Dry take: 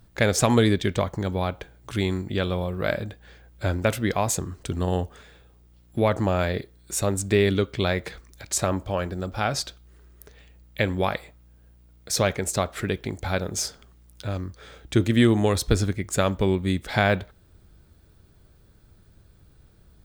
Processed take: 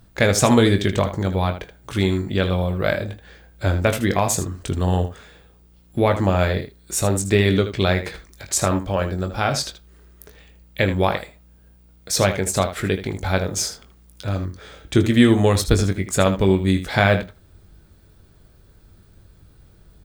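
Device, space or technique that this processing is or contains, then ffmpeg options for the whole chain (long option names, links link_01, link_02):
slapback doubling: -filter_complex "[0:a]asplit=3[link_01][link_02][link_03];[link_02]adelay=21,volume=-8.5dB[link_04];[link_03]adelay=78,volume=-11dB[link_05];[link_01][link_04][link_05]amix=inputs=3:normalize=0,volume=3.5dB"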